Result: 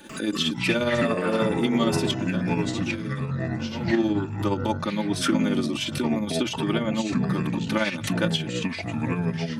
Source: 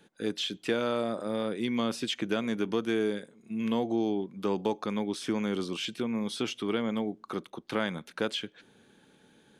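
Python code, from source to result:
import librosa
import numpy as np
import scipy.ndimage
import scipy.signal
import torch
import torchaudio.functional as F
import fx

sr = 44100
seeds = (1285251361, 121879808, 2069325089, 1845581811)

y = fx.high_shelf(x, sr, hz=9000.0, db=5.0)
y = y + 0.91 * np.pad(y, (int(3.4 * sr / 1000.0), 0))[:len(y)]
y = y * (1.0 - 0.59 / 2.0 + 0.59 / 2.0 * np.cos(2.0 * np.pi * 17.0 * (np.arange(len(y)) / sr)))
y = fx.comb_fb(y, sr, f0_hz=420.0, decay_s=0.77, harmonics='all', damping=0.0, mix_pct=70, at=(2.11, 3.91))
y = fx.echo_pitch(y, sr, ms=94, semitones=-5, count=3, db_per_echo=-3.0)
y = fx.pre_swell(y, sr, db_per_s=100.0)
y = y * librosa.db_to_amplitude(4.5)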